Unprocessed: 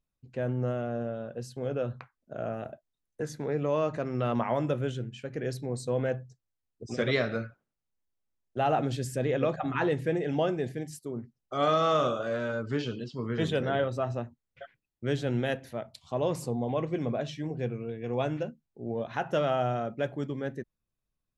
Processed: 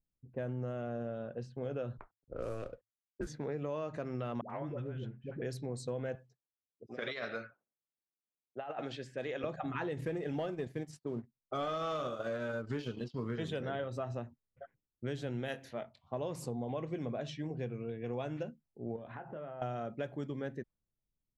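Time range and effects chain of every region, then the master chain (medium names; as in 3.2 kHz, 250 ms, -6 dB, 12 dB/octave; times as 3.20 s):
1.97–3.27 s: CVSD coder 64 kbps + level-controlled noise filter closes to 560 Hz, open at -34 dBFS + frequency shift -110 Hz
4.41–5.42 s: treble shelf 2.6 kHz -9.5 dB + compression 5:1, threshold -32 dBFS + phase dispersion highs, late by 90 ms, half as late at 610 Hz
6.15–9.44 s: high-pass 790 Hz 6 dB/octave + compressor with a negative ratio -33 dBFS, ratio -0.5
9.97–13.36 s: transient shaper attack -1 dB, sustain -8 dB + waveshaping leveller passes 1
15.48–16.13 s: tilt EQ +1.5 dB/octave + doubling 22 ms -9.5 dB
18.96–19.62 s: low-pass 3.6 kHz + compression, threshold -39 dBFS + doubling 25 ms -9 dB
whole clip: level-controlled noise filter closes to 440 Hz, open at -28.5 dBFS; compression, threshold -31 dBFS; trim -3 dB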